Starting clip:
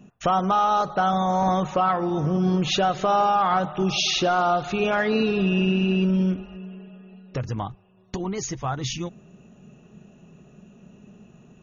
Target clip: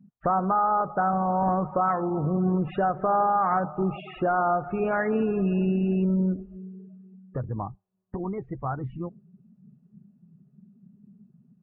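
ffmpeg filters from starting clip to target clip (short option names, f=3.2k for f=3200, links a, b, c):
-af "lowpass=f=1.9k:w=0.5412,lowpass=f=1.9k:w=1.3066,afftdn=nr=24:nf=-37,volume=-2.5dB"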